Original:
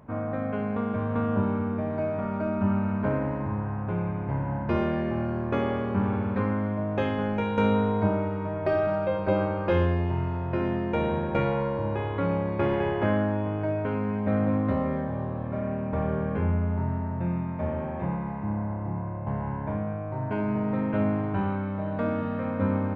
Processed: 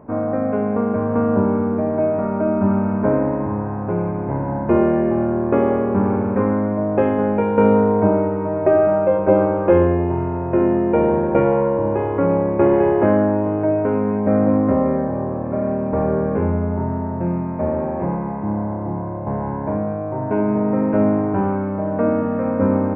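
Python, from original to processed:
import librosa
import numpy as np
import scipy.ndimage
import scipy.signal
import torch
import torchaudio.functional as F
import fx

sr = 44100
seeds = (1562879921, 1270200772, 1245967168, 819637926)

y = fx.curve_eq(x, sr, hz=(130.0, 350.0, 830.0, 2600.0, 4000.0, 5800.0), db=(0, 10, 6, -4, -24, -11))
y = F.gain(torch.from_numpy(y), 3.0).numpy()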